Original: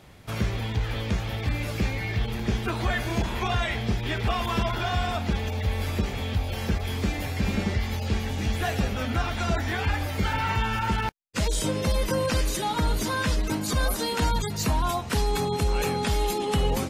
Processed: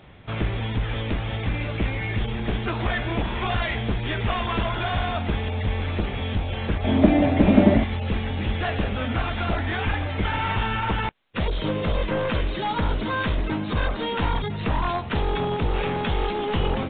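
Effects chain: one-sided fold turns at -23.5 dBFS; 6.84–7.84 small resonant body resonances 270/600 Hz, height 17 dB, ringing for 25 ms; gain +2.5 dB; A-law 64 kbps 8000 Hz

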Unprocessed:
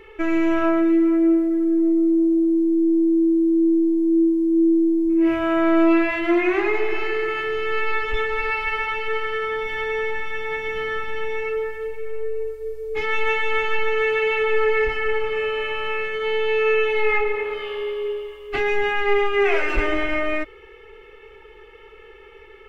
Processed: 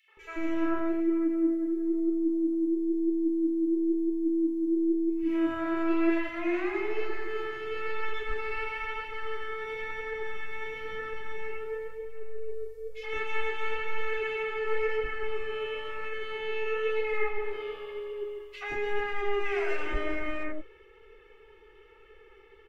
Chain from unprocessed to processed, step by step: flange 1 Hz, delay 1.5 ms, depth 8.4 ms, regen +76%; three bands offset in time highs, mids, lows 80/170 ms, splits 690/2500 Hz; gain -4.5 dB

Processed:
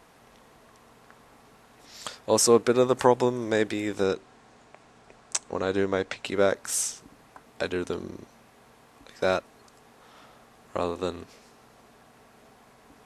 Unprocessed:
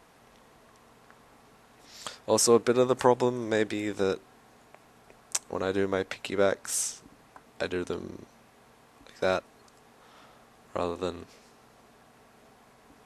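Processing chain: 4.06–6.26 LPF 8900 Hz 24 dB/oct; gain +2 dB

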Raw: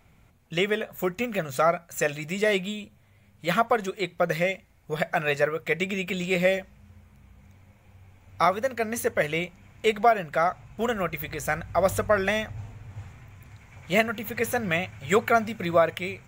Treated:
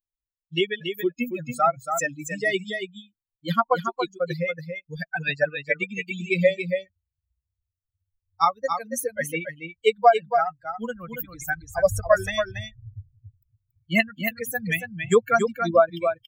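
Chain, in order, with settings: per-bin expansion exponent 3; echo 0.28 s -7 dB; gain +8 dB

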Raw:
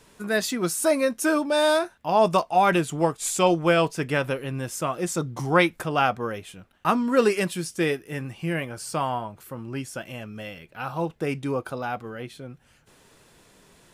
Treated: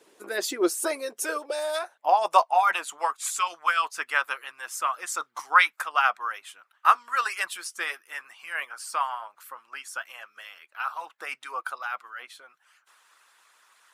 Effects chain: harmonic-percussive split harmonic -16 dB; high-pass sweep 380 Hz -> 1200 Hz, 0.89–3.17

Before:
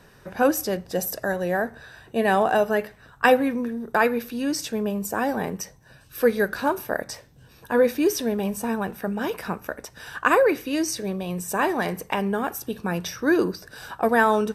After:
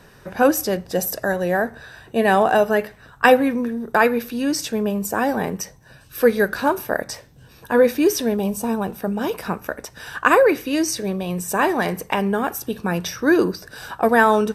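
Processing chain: 8.35–9.45 bell 1800 Hz -10.5 dB -> -4.5 dB 0.87 oct; gain +4 dB

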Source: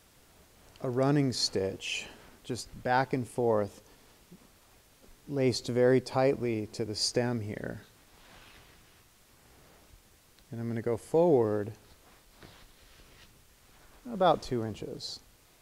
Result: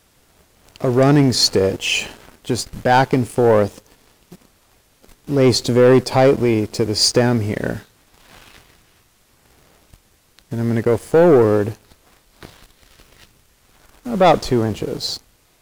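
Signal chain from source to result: sample leveller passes 2; gain +8 dB

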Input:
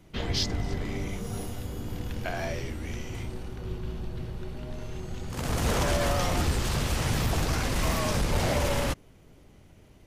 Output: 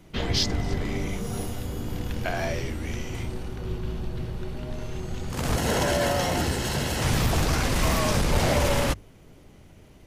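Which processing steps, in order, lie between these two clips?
notches 50/100 Hz; 5.56–7.02 notch comb 1200 Hz; gain +4 dB

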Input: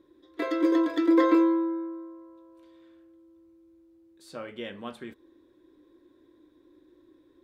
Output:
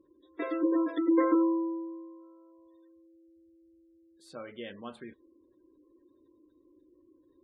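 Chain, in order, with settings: spectral gate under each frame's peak -25 dB strong; gain -4 dB

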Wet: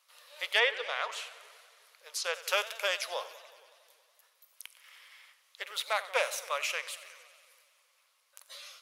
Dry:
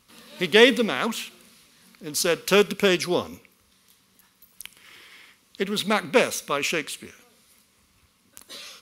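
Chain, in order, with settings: elliptic high-pass 560 Hz, stop band 50 dB; 0.58–2.35 treble ducked by the level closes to 3000 Hz, closed at -18.5 dBFS; warbling echo 92 ms, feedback 74%, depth 159 cents, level -17 dB; gain -6.5 dB

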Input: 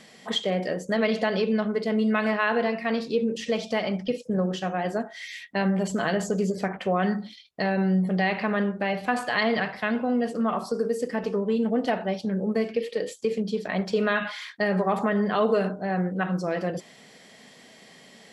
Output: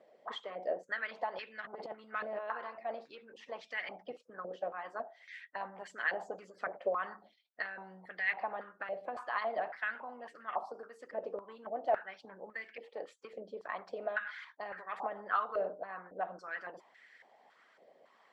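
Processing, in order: 1.61–2.39 transient shaper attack -8 dB, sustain +10 dB; harmonic-percussive split harmonic -12 dB; stepped band-pass 3.6 Hz 580–1800 Hz; gain +3.5 dB

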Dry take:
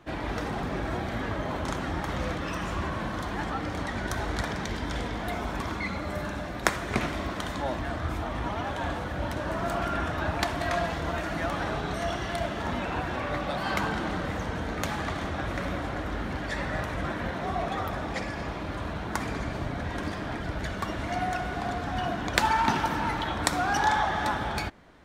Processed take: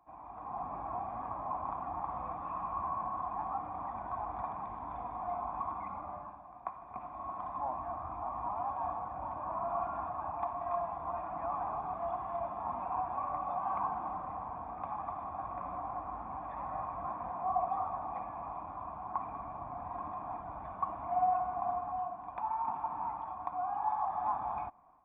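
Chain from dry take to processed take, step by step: band shelf 520 Hz -8.5 dB 1.2 oct; AGC gain up to 10.5 dB; vocal tract filter a; reverse echo 0.14 s -20 dB; gain -1 dB

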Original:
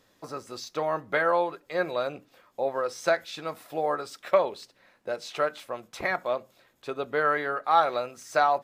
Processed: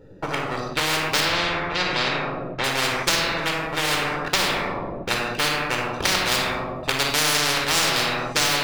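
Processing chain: Wiener smoothing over 41 samples; 6.31–7.53 high shelf 5200 Hz +11 dB; sample leveller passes 2; 1.2–2.64 air absorption 140 m; shoebox room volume 2700 m³, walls furnished, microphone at 4.4 m; spectral compressor 10:1

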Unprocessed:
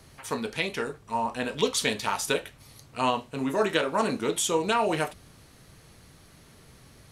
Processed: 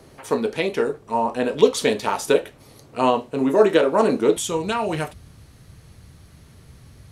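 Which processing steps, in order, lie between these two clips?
bell 420 Hz +11.5 dB 2.2 oct, from 4.37 s 78 Hz

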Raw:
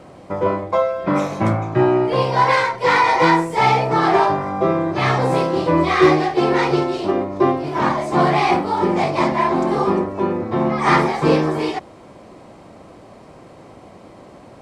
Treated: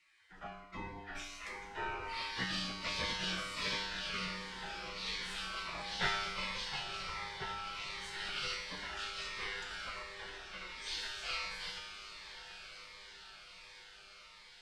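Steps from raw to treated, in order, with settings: LPF 1400 Hz 6 dB/oct, from 1.15 s 3400 Hz; spectral gate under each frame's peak -25 dB weak; resonator 52 Hz, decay 1.2 s, harmonics odd, mix 90%; frequency shift -73 Hz; diffused feedback echo 1.082 s, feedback 64%, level -10 dB; cascading phaser falling 1.4 Hz; gain +11.5 dB

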